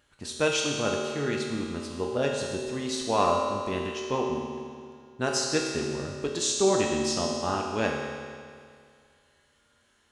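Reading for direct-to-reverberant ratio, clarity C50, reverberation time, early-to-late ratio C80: -2.0 dB, 1.0 dB, 2.1 s, 2.5 dB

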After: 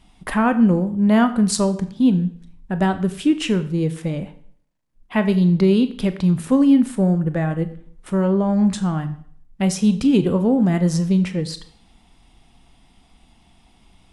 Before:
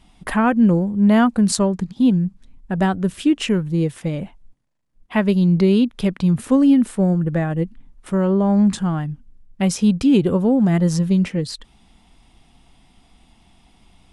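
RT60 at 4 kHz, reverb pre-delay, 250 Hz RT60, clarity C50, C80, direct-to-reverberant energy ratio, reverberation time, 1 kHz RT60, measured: 0.55 s, 24 ms, 0.55 s, 14.0 dB, 16.5 dB, 10.0 dB, 0.55 s, 0.55 s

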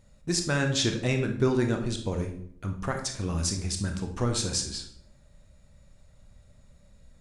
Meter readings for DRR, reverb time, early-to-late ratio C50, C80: 4.0 dB, 0.65 s, 7.5 dB, 11.5 dB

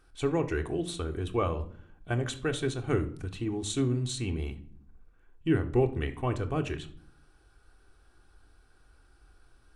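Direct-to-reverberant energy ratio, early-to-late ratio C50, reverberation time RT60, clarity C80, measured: 5.0 dB, 14.5 dB, 0.60 s, 19.0 dB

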